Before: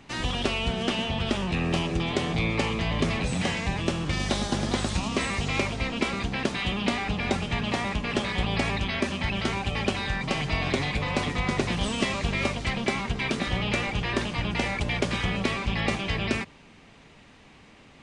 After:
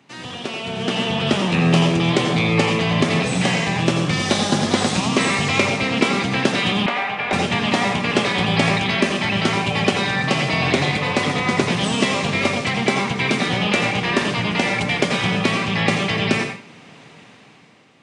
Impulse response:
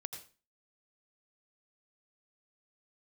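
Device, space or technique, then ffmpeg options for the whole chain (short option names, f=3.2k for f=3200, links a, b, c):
far laptop microphone: -filter_complex "[1:a]atrim=start_sample=2205[a];[0:a][a]afir=irnorm=-1:irlink=0,highpass=f=120:w=0.5412,highpass=f=120:w=1.3066,dynaudnorm=f=170:g=11:m=14dB,asettb=1/sr,asplit=3[b][c][d];[b]atrim=end=6.864[e];[c]atrim=start=6.86:end=7.33,asetpts=PTS-STARTPTS,afade=t=in:d=0.004:c=qsin,afade=t=out:st=0.466:d=0.004:c=qsin,acrossover=split=540 3100:gain=0.158 1 0.126[f][g][h];[f][g][h]amix=inputs=3:normalize=0[i];[d]atrim=start=7.326[j];[e][i]acrossfade=d=0.004:c1=hsin:c2=qsin[k];[k][j]acrossfade=d=0.004:c1=qsin:c2=hsin"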